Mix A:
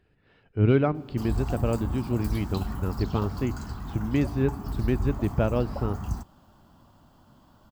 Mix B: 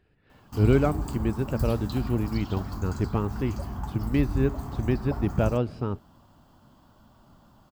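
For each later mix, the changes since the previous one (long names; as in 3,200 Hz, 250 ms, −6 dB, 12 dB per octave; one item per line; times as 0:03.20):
background: entry −0.65 s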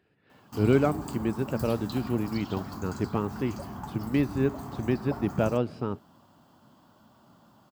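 master: add high-pass filter 140 Hz 12 dB per octave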